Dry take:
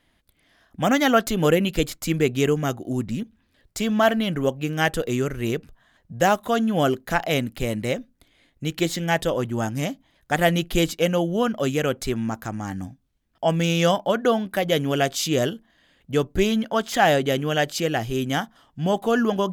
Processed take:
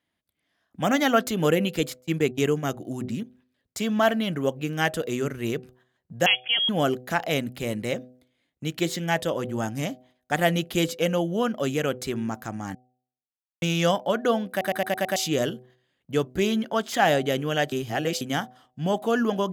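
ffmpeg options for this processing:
ffmpeg -i in.wav -filter_complex "[0:a]asettb=1/sr,asplit=3[link_01][link_02][link_03];[link_01]atrim=end=2.014[link_04];[link_02]atrim=start=2.01:end=2.74,asetpts=PTS-STARTPTS,afade=type=in:duration=0.004:curve=qsin,afade=type=out:start_time=0.726:duration=0.004:curve=qsin,agate=range=-30dB:threshold=-27dB:ratio=16:release=100:detection=peak[link_05];[link_03]atrim=start=2.736[link_06];[link_04][link_05]acrossfade=duration=0.004:curve1=hsin:curve2=qsin[link_07];[link_07][link_06]acrossfade=duration=0.004:curve1=qsin:curve2=hsin,asettb=1/sr,asplit=3[link_08][link_09][link_10];[link_08]atrim=end=6.264[link_11];[link_09]atrim=start=6.26:end=6.69,asetpts=PTS-STARTPTS,afade=type=in:duration=0.004:curve=qsin,afade=type=out:start_time=0.426:duration=0.004:curve=qsin,lowpass=frequency=3000:width_type=q:width=0.5098,lowpass=frequency=3000:width_type=q:width=0.6013,lowpass=frequency=3000:width_type=q:width=0.9,lowpass=frequency=3000:width_type=q:width=2.563,afreqshift=-3500[link_12];[link_10]atrim=start=6.686[link_13];[link_11][link_12]acrossfade=duration=0.004:curve1=hsin:curve2=qsin[link_14];[link_14][link_13]acrossfade=duration=0.004:curve1=qsin:curve2=hsin,asplit=11[link_15][link_16][link_17][link_18][link_19][link_20][link_21][link_22][link_23][link_24][link_25];[link_15]atrim=end=12.75,asetpts=PTS-STARTPTS,afade=type=out:start_time=12.746:duration=0.004:curve=hsin[link_26];[link_16]atrim=start=12.75:end=13.62,asetpts=PTS-STARTPTS,volume=0[link_27];[link_17]atrim=start=13.62:end=14.612,asetpts=PTS-STARTPTS,afade=type=in:duration=0.004:curve=hsin[link_28];[link_18]atrim=start=14.498:end=14.612[link_29];[link_19]atrim=start=14.498:end=14.612[link_30];[link_20]atrim=start=14.498:end=14.612[link_31];[link_21]atrim=start=14.498:end=14.612[link_32];[link_22]atrim=start=14.498:end=14.612[link_33];[link_23]atrim=start=15.158:end=17.722[link_34];[link_24]atrim=start=17.718:end=18.212,asetpts=PTS-STARTPTS,areverse[link_35];[link_25]atrim=start=18.208[link_36];[link_26][link_27][link_28]concat=n=3:v=0:a=1[link_37];[link_37][link_29]acrossfade=duration=0.004:curve1=hsin:curve2=hsin[link_38];[link_38][link_30]acrossfade=duration=0.004:curve1=hsin:curve2=hsin[link_39];[link_39][link_31]acrossfade=duration=0.004:curve1=hsin:curve2=hsin[link_40];[link_40][link_32]acrossfade=duration=0.004:curve1=hsin:curve2=hsin[link_41];[link_41][link_33]acrossfade=duration=0.004:curve1=hsin:curve2=hsin[link_42];[link_42][link_34]acrossfade=duration=0.004:curve1=hsin:curve2=hsin[link_43];[link_43][link_35]acrossfade=duration=0.004:curve1=hsin:curve2=hsin[link_44];[link_44][link_36]acrossfade=duration=0.004:curve1=hsin:curve2=hsin,agate=range=-11dB:threshold=-52dB:ratio=16:detection=peak,highpass=98,bandreject=frequency=126.1:width_type=h:width=4,bandreject=frequency=252.2:width_type=h:width=4,bandreject=frequency=378.3:width_type=h:width=4,bandreject=frequency=504.4:width_type=h:width=4,bandreject=frequency=630.5:width_type=h:width=4,bandreject=frequency=756.6:width_type=h:width=4,volume=-2.5dB" out.wav

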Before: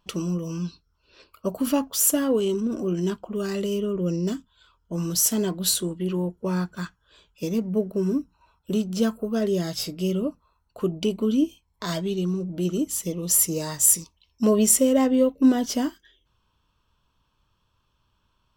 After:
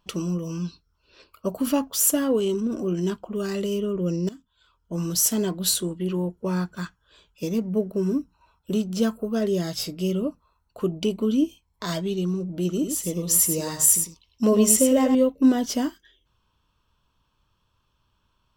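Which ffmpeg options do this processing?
ffmpeg -i in.wav -filter_complex "[0:a]asettb=1/sr,asplit=3[link_01][link_02][link_03];[link_01]atrim=end=12.714[link_04];[link_02]atrim=start=12.71:end=15.15,asetpts=PTS-STARTPTS,afade=type=in:duration=0.004:curve=qsin,afade=type=out:start_time=2.436:duration=0.004:curve=qsin,aecho=1:1:101:0.447,atrim=end_sample=107604[link_05];[link_03]atrim=start=15.146[link_06];[link_04][link_05]acrossfade=duration=0.004:curve1=hsin:curve2=qsin[link_07];[link_07][link_06]acrossfade=duration=0.004:curve1=qsin:curve2=hsin,asplit=2[link_08][link_09];[link_08]atrim=end=4.29,asetpts=PTS-STARTPTS,afade=type=out:start_time=4.286:duration=0.004:curve=hsin:silence=0.149624[link_10];[link_09]atrim=start=4.29,asetpts=PTS-STARTPTS,afade=type=in:duration=0.66:silence=0.149624[link_11];[link_10][link_11]concat=n=2:v=0:a=1" out.wav

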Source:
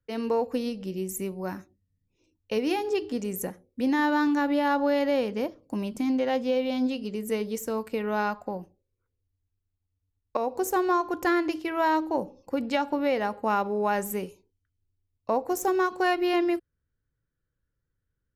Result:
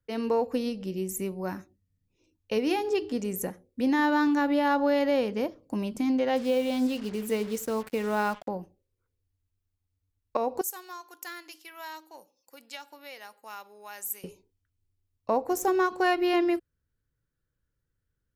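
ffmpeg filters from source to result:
ffmpeg -i in.wav -filter_complex "[0:a]asettb=1/sr,asplit=3[link_01][link_02][link_03];[link_01]atrim=end=6.364[link_04];[link_02]atrim=start=6.36:end=8.48,asetpts=PTS-STARTPTS,afade=type=in:duration=0.004:curve=qsin,afade=type=out:start_time=2.116:duration=0.004:curve=qsin,acrusher=bits=6:mix=0:aa=0.5[link_05];[link_03]atrim=start=8.476[link_06];[link_04][link_05]acrossfade=duration=0.004:curve1=hsin:curve2=qsin[link_07];[link_07][link_06]acrossfade=duration=0.004:curve1=qsin:curve2=hsin,asettb=1/sr,asplit=3[link_08][link_09][link_10];[link_08]atrim=end=10.614[link_11];[link_09]atrim=start=10.61:end=14.24,asetpts=PTS-STARTPTS,afade=type=in:duration=0.004:curve=qsin,afade=type=out:start_time=3.626:duration=0.004:curve=qsin,aderivative[link_12];[link_10]atrim=start=14.236[link_13];[link_11][link_12]acrossfade=duration=0.004:curve1=hsin:curve2=qsin[link_14];[link_14][link_13]acrossfade=duration=0.004:curve1=qsin:curve2=hsin" out.wav

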